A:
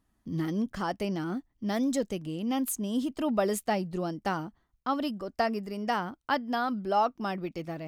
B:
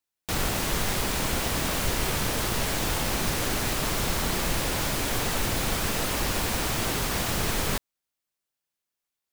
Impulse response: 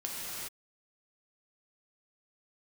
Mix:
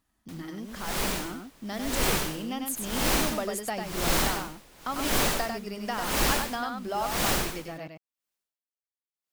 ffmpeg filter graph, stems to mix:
-filter_complex "[0:a]tiltshelf=f=770:g=-4,acompressor=threshold=-39dB:ratio=2,volume=-1.5dB,asplit=2[a][b];[b]volume=-4.5dB[c];[1:a]equalizer=f=93:t=o:w=0.69:g=-12,aeval=exprs='val(0)*pow(10,-31*(0.5-0.5*cos(2*PI*0.96*n/s))/20)':c=same,volume=-1dB[d];[c]aecho=0:1:97:1[e];[a][d][e]amix=inputs=3:normalize=0,dynaudnorm=f=200:g=17:m=5dB"

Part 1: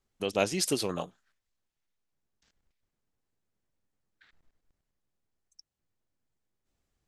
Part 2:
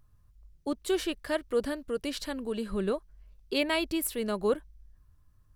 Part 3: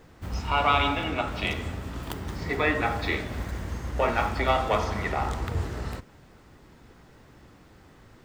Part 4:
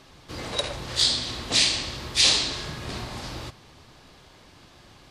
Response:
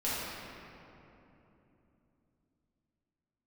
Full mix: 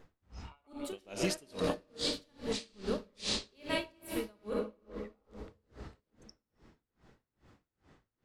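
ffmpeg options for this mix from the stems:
-filter_complex "[0:a]adelay=700,volume=-0.5dB,asplit=2[a][b];[b]volume=-15dB[c];[1:a]volume=-8.5dB,asplit=3[d][e][f];[e]volume=-4.5dB[g];[2:a]lowpass=7.2k,acompressor=threshold=-31dB:ratio=12,volume=-7.5dB[h];[3:a]adelay=1000,volume=-11.5dB[i];[f]apad=whole_len=363429[j];[h][j]sidechaincompress=threshold=-46dB:ratio=4:attack=8.1:release=1380[k];[4:a]atrim=start_sample=2205[l];[c][g]amix=inputs=2:normalize=0[m];[m][l]afir=irnorm=-1:irlink=0[n];[a][d][k][i][n]amix=inputs=5:normalize=0,aeval=exprs='val(0)*pow(10,-33*(0.5-0.5*cos(2*PI*2.4*n/s))/20)':c=same"

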